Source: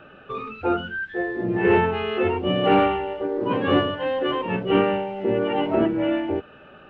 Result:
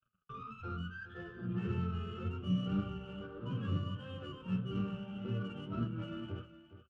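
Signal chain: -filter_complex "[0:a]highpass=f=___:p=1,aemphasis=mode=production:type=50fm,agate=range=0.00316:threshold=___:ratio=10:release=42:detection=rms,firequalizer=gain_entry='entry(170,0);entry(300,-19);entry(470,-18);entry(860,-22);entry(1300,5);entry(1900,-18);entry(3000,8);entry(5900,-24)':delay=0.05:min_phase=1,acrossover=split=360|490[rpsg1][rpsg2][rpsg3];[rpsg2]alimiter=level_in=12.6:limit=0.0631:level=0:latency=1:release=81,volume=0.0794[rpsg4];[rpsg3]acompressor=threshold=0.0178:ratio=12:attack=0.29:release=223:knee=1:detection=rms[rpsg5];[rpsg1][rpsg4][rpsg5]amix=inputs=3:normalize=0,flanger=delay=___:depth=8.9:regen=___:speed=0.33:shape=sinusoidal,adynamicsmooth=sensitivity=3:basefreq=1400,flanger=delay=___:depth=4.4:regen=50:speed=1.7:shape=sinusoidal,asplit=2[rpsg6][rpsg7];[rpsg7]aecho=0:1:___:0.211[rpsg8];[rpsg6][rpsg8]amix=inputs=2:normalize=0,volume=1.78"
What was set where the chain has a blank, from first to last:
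52, 0.00631, 5.2, -89, 7.9, 414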